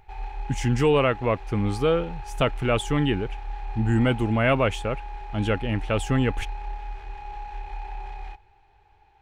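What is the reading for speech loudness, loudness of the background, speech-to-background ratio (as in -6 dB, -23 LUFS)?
-24.5 LUFS, -38.0 LUFS, 13.5 dB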